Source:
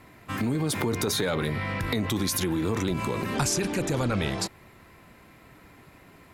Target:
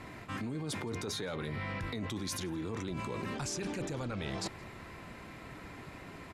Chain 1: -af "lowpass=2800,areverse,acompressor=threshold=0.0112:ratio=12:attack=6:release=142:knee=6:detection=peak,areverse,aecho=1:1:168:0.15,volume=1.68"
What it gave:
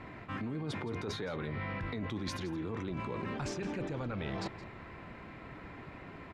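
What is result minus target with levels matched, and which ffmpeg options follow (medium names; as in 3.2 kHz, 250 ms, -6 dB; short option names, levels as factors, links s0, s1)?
8 kHz band -9.5 dB; echo-to-direct +10 dB
-af "lowpass=8300,areverse,acompressor=threshold=0.0112:ratio=12:attack=6:release=142:knee=6:detection=peak,areverse,aecho=1:1:168:0.0473,volume=1.68"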